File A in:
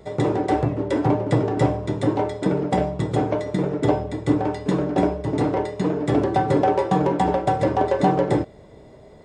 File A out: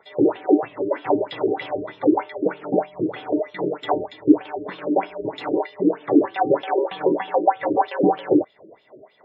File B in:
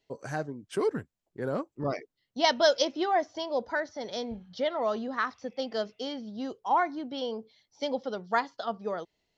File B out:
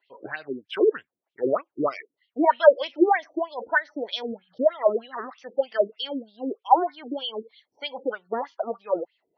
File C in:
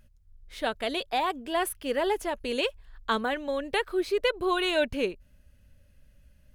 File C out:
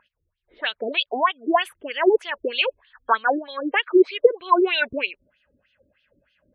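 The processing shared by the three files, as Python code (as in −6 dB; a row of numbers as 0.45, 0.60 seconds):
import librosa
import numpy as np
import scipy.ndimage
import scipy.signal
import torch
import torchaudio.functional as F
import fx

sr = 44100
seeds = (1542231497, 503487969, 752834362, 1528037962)

y = fx.wah_lfo(x, sr, hz=3.2, low_hz=310.0, high_hz=3300.0, q=4.4)
y = fx.spec_gate(y, sr, threshold_db=-25, keep='strong')
y = librosa.util.normalize(y) * 10.0 ** (-2 / 20.0)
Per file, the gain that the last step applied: +9.5, +15.0, +16.0 decibels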